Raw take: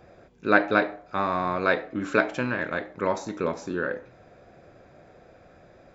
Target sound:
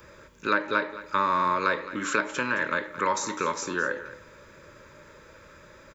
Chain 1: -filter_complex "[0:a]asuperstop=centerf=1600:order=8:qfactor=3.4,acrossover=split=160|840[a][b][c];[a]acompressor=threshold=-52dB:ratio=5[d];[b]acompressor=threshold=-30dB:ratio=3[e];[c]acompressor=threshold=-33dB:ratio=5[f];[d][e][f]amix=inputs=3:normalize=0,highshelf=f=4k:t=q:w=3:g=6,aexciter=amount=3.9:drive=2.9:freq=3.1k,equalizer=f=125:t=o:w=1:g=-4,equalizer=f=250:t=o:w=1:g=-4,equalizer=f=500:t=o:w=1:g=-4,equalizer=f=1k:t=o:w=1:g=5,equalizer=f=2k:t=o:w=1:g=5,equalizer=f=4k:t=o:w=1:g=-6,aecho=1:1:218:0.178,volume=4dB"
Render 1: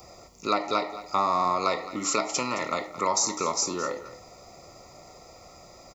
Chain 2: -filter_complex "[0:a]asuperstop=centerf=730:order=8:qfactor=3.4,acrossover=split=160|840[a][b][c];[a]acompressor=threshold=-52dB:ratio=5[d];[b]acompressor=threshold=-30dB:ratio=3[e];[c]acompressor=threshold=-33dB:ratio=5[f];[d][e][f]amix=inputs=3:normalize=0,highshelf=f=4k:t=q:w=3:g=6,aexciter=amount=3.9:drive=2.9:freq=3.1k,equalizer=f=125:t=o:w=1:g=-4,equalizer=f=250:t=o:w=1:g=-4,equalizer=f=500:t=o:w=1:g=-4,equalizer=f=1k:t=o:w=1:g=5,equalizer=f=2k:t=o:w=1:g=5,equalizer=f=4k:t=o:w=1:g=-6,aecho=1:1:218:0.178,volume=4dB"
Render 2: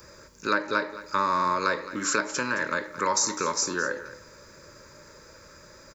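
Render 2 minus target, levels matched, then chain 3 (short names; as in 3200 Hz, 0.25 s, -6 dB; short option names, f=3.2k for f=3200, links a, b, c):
8000 Hz band +8.5 dB
-filter_complex "[0:a]asuperstop=centerf=730:order=8:qfactor=3.4,acrossover=split=160|840[a][b][c];[a]acompressor=threshold=-52dB:ratio=5[d];[b]acompressor=threshold=-30dB:ratio=3[e];[c]acompressor=threshold=-33dB:ratio=5[f];[d][e][f]amix=inputs=3:normalize=0,aexciter=amount=3.9:drive=2.9:freq=3.1k,equalizer=f=125:t=o:w=1:g=-4,equalizer=f=250:t=o:w=1:g=-4,equalizer=f=500:t=o:w=1:g=-4,equalizer=f=1k:t=o:w=1:g=5,equalizer=f=2k:t=o:w=1:g=5,equalizer=f=4k:t=o:w=1:g=-6,aecho=1:1:218:0.178,volume=4dB"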